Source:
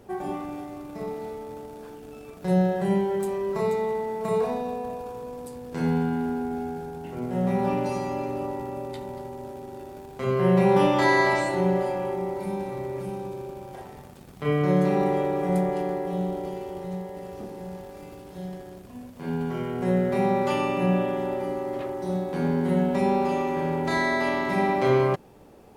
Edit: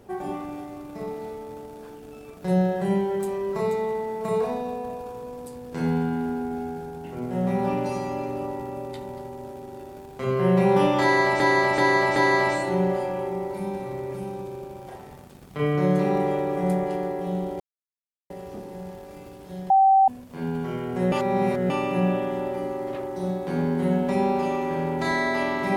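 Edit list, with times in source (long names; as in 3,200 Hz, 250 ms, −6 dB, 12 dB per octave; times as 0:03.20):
0:11.02–0:11.40: repeat, 4 plays
0:16.46–0:17.16: silence
0:18.56–0:18.94: beep over 774 Hz −13 dBFS
0:19.98–0:20.56: reverse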